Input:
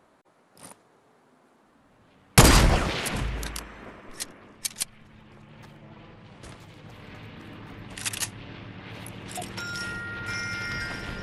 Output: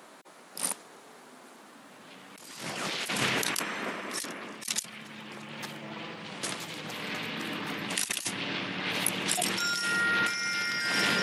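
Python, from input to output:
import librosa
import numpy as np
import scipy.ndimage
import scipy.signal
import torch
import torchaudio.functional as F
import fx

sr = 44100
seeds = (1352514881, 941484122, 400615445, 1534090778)

y = scipy.signal.sosfilt(scipy.signal.butter(4, 170.0, 'highpass', fs=sr, output='sos'), x)
y = fx.high_shelf(y, sr, hz=2000.0, db=10.5)
y = fx.over_compress(y, sr, threshold_db=-33.0, ratio=-1.0)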